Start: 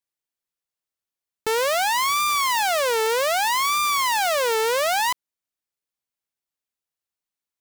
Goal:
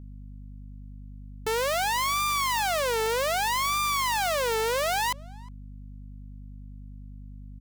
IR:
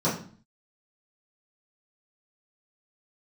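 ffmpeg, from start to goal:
-filter_complex "[0:a]alimiter=limit=-21.5dB:level=0:latency=1,aeval=exprs='val(0)+0.00891*(sin(2*PI*50*n/s)+sin(2*PI*2*50*n/s)/2+sin(2*PI*3*50*n/s)/3+sin(2*PI*4*50*n/s)/4+sin(2*PI*5*50*n/s)/5)':channel_layout=same,asplit=2[link_01][link_02];[link_02]adelay=360,highpass=300,lowpass=3400,asoftclip=type=hard:threshold=-29.5dB,volume=-20dB[link_03];[link_01][link_03]amix=inputs=2:normalize=0"

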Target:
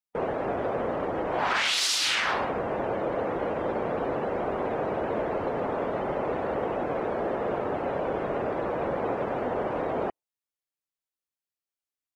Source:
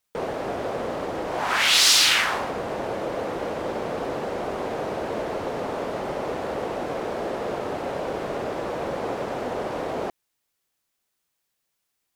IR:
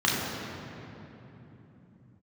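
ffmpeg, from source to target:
-af "alimiter=limit=-16dB:level=0:latency=1:release=82,afftdn=noise_reduction=18:noise_floor=-42"

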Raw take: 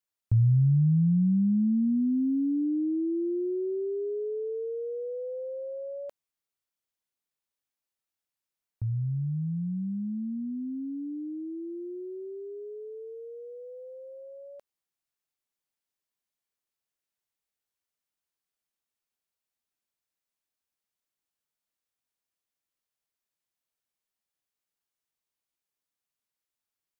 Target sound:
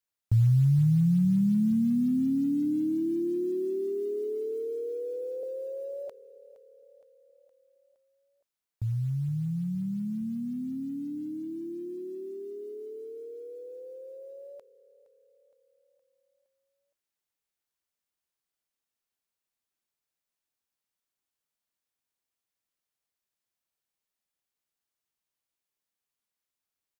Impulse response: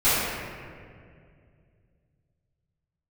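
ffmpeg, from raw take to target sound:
-filter_complex "[0:a]asettb=1/sr,asplit=3[link_01][link_02][link_03];[link_01]atrim=end=5.434[link_04];[link_02]atrim=start=5.43:end=6.08,asetpts=PTS-STARTPTS,afade=type=in:duration=0.004:curve=qsin,afade=type=out:start_time=0.646:duration=0.004:curve=qsin,highpass=frequency=280:width=0.5412,highpass=frequency=280:width=1.3066[link_05];[link_03]atrim=start=6.076[link_06];[link_04][link_05]acrossfade=duration=0.004:curve1=hsin:curve2=qsin[link_07];[link_07][link_06]acrossfade=duration=0.004:curve1=qsin:curve2=hsin,acrusher=bits=9:mode=log:mix=0:aa=0.000001,aecho=1:1:466|932|1398|1864|2330:0.126|0.0755|0.0453|0.0272|0.0163"

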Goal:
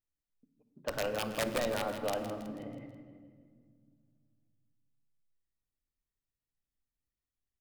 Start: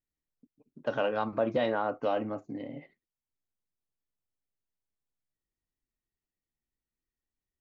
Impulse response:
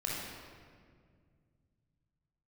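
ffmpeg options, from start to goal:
-filter_complex "[0:a]aeval=exprs='(mod(8.91*val(0)+1,2)-1)/8.91':channel_layout=same,aecho=1:1:162|324|486|648|810:0.299|0.143|0.0688|0.033|0.0158,asplit=2[link_01][link_02];[1:a]atrim=start_sample=2205,lowshelf=frequency=230:gain=10[link_03];[link_02][link_03]afir=irnorm=-1:irlink=0,volume=-13dB[link_04];[link_01][link_04]amix=inputs=2:normalize=0,volume=-7dB"

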